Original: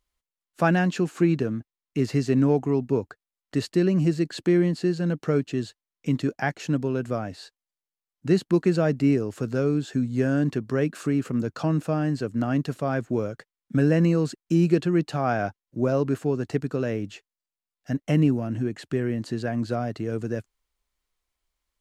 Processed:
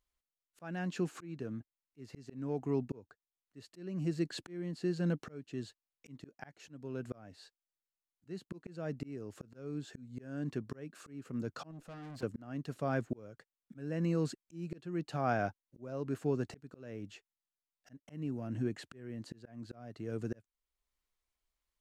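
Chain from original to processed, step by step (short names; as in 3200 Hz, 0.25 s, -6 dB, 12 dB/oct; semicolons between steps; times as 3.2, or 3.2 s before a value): auto swell 0.588 s; 11.71–12.23 tube stage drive 38 dB, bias 0.4; gain -7 dB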